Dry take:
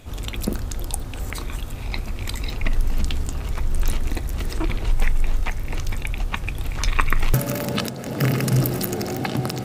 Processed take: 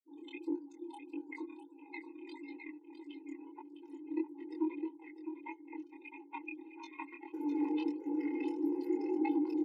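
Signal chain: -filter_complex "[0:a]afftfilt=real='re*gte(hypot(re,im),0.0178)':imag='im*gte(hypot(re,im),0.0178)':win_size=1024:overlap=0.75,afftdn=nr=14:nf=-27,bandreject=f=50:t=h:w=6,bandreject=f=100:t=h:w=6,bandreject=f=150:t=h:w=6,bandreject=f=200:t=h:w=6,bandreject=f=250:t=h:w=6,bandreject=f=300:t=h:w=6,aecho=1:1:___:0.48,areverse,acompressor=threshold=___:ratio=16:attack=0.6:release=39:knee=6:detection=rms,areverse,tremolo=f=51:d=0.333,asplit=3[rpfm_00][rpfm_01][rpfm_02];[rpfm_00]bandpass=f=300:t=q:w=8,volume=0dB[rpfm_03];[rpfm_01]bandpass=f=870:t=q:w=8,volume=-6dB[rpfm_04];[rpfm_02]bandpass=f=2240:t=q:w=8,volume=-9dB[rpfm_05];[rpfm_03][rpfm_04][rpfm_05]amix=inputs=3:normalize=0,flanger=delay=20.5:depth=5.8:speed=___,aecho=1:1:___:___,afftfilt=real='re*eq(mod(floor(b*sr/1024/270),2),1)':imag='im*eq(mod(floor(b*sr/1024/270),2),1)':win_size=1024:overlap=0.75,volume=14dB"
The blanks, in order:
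6.2, -24dB, 1.6, 657, 0.335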